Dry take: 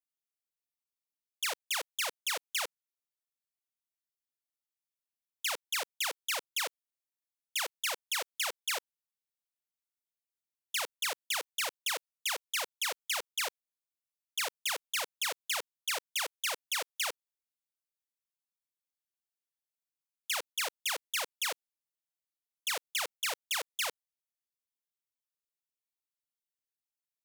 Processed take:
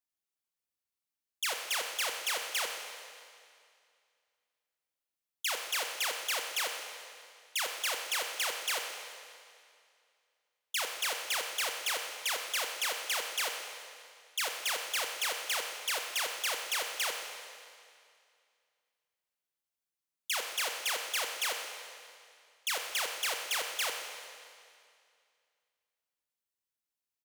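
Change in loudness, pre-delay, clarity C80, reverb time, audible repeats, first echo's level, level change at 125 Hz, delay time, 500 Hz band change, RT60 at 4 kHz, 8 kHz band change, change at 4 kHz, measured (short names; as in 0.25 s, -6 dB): +1.0 dB, 25 ms, 5.5 dB, 2.3 s, 1, -15.0 dB, n/a, 0.124 s, +1.5 dB, 2.2 s, +1.5 dB, +1.5 dB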